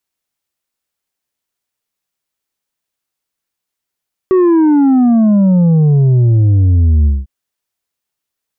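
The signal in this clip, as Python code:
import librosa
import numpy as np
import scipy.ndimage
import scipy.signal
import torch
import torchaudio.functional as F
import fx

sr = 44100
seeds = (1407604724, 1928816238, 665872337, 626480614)

y = fx.sub_drop(sr, level_db=-7, start_hz=380.0, length_s=2.95, drive_db=5.0, fade_s=0.2, end_hz=65.0)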